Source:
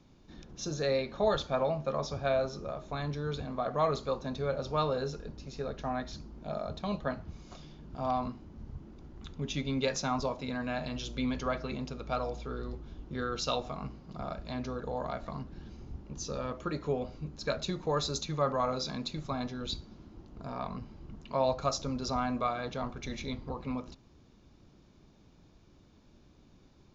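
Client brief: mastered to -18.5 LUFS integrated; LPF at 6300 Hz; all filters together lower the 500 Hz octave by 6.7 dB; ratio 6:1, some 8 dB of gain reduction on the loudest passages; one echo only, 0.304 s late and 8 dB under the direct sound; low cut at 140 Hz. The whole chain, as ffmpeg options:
-af "highpass=140,lowpass=6.3k,equalizer=f=500:t=o:g=-8.5,acompressor=threshold=-36dB:ratio=6,aecho=1:1:304:0.398,volume=23dB"

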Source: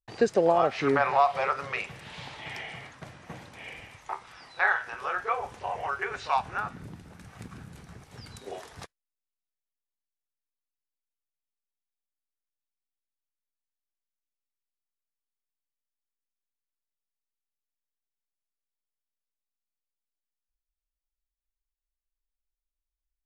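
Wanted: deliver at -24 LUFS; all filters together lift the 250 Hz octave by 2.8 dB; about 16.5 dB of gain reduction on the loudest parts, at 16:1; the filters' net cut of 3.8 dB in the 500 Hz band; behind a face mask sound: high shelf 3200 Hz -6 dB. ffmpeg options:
-af "equalizer=f=250:t=o:g=5.5,equalizer=f=500:t=o:g=-6,acompressor=threshold=-35dB:ratio=16,highshelf=f=3.2k:g=-6,volume=18.5dB"

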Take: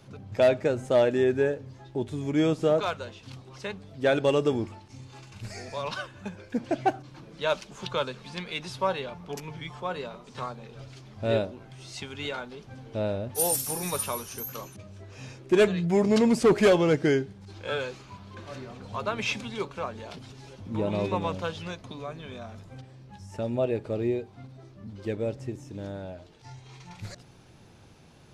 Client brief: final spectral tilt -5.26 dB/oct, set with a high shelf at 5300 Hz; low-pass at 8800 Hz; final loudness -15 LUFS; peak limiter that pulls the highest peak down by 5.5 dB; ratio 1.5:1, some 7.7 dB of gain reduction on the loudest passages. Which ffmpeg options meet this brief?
-af "lowpass=8.8k,highshelf=f=5.3k:g=-6.5,acompressor=threshold=-38dB:ratio=1.5,volume=22.5dB,alimiter=limit=-2.5dB:level=0:latency=1"

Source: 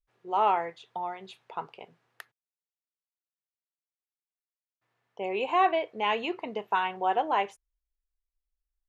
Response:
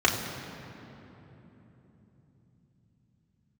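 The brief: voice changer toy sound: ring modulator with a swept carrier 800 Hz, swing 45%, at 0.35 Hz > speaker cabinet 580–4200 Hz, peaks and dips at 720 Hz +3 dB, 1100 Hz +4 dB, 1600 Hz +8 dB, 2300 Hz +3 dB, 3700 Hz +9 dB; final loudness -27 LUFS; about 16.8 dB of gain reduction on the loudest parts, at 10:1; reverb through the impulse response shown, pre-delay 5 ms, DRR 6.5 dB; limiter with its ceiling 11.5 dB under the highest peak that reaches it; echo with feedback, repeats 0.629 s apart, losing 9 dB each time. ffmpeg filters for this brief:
-filter_complex "[0:a]acompressor=threshold=-36dB:ratio=10,alimiter=level_in=11.5dB:limit=-24dB:level=0:latency=1,volume=-11.5dB,aecho=1:1:629|1258|1887|2516:0.355|0.124|0.0435|0.0152,asplit=2[a][b];[1:a]atrim=start_sample=2205,adelay=5[c];[b][c]afir=irnorm=-1:irlink=0,volume=-22.5dB[d];[a][d]amix=inputs=2:normalize=0,aeval=exprs='val(0)*sin(2*PI*800*n/s+800*0.45/0.35*sin(2*PI*0.35*n/s))':c=same,highpass=580,equalizer=f=720:t=q:w=4:g=3,equalizer=f=1.1k:t=q:w=4:g=4,equalizer=f=1.6k:t=q:w=4:g=8,equalizer=f=2.3k:t=q:w=4:g=3,equalizer=f=3.7k:t=q:w=4:g=9,lowpass=f=4.2k:w=0.5412,lowpass=f=4.2k:w=1.3066,volume=17dB"

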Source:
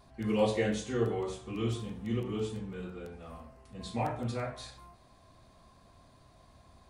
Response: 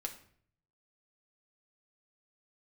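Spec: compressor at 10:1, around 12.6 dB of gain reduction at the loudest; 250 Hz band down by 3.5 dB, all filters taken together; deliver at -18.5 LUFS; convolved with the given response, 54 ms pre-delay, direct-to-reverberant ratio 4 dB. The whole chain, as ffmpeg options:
-filter_complex "[0:a]equalizer=f=250:t=o:g=-4.5,acompressor=threshold=-37dB:ratio=10,asplit=2[a][b];[1:a]atrim=start_sample=2205,adelay=54[c];[b][c]afir=irnorm=-1:irlink=0,volume=-3.5dB[d];[a][d]amix=inputs=2:normalize=0,volume=23.5dB"

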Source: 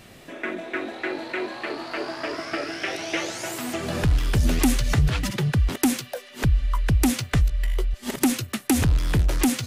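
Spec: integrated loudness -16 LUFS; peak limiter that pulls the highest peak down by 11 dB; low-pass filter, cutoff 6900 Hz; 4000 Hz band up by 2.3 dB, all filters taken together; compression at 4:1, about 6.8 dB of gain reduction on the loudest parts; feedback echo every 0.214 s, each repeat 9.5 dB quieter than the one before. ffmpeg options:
-af "lowpass=6.9k,equalizer=f=4k:t=o:g=3.5,acompressor=threshold=-23dB:ratio=4,alimiter=limit=-21.5dB:level=0:latency=1,aecho=1:1:214|428|642|856:0.335|0.111|0.0365|0.012,volume=14.5dB"

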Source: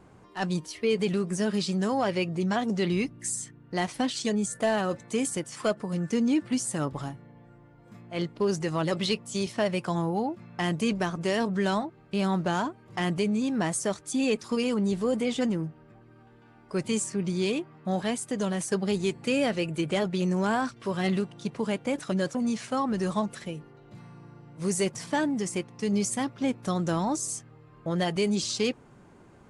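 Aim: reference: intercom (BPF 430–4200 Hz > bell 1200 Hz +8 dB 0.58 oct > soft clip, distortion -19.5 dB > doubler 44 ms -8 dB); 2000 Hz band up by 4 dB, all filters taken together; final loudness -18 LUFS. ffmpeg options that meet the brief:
-filter_complex "[0:a]highpass=430,lowpass=4.2k,equalizer=f=1.2k:t=o:w=0.58:g=8,equalizer=f=2k:t=o:g=3,asoftclip=threshold=-17dB,asplit=2[a][b];[b]adelay=44,volume=-8dB[c];[a][c]amix=inputs=2:normalize=0,volume=13.5dB"

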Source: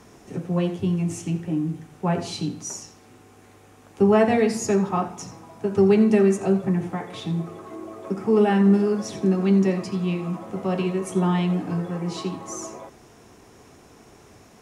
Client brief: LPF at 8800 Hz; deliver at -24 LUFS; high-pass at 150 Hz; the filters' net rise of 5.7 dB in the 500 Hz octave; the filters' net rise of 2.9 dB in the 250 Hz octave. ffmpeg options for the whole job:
-af "highpass=150,lowpass=8.8k,equalizer=f=250:t=o:g=4.5,equalizer=f=500:t=o:g=6,volume=-5dB"

